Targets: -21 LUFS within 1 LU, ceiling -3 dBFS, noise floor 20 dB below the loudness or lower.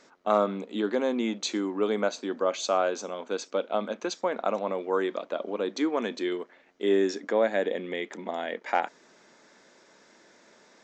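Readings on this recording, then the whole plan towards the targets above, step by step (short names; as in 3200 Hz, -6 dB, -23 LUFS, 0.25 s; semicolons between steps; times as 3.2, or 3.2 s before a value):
loudness -29.0 LUFS; peak -9.0 dBFS; loudness target -21.0 LUFS
-> gain +8 dB; limiter -3 dBFS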